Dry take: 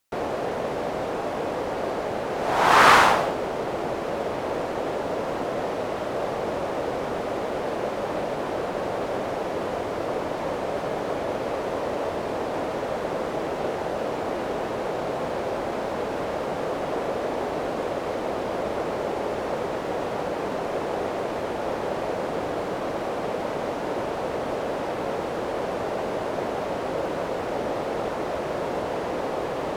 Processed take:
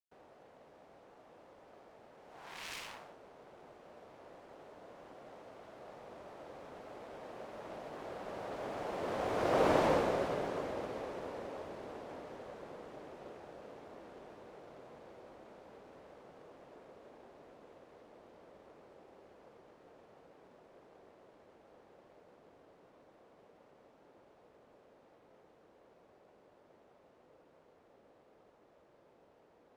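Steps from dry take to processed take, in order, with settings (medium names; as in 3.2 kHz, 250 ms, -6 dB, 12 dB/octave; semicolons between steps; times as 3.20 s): self-modulated delay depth 0.55 ms; Doppler pass-by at 9.75 s, 19 m/s, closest 4.2 m; trim +1 dB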